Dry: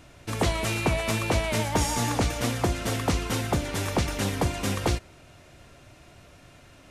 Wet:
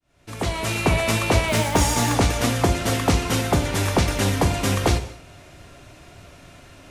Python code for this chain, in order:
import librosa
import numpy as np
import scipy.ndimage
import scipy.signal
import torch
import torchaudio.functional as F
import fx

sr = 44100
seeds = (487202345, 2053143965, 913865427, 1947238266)

y = fx.fade_in_head(x, sr, length_s=0.96)
y = fx.quant_companded(y, sr, bits=6, at=(1.48, 2.14))
y = fx.rev_gated(y, sr, seeds[0], gate_ms=270, shape='falling', drr_db=8.5)
y = F.gain(torch.from_numpy(y), 5.5).numpy()